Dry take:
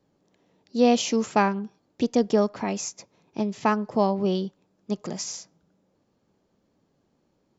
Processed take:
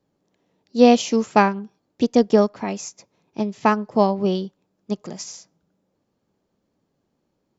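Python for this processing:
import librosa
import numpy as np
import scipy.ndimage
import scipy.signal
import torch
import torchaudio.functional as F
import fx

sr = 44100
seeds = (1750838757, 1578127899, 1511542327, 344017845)

y = fx.upward_expand(x, sr, threshold_db=-35.0, expansion=1.5)
y = y * 10.0 ** (7.0 / 20.0)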